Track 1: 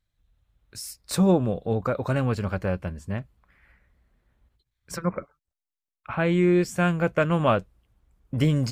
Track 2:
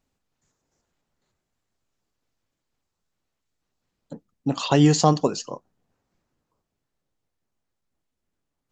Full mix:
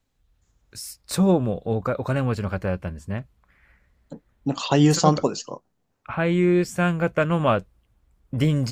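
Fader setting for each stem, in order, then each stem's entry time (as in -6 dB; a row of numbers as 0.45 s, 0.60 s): +1.0 dB, -0.5 dB; 0.00 s, 0.00 s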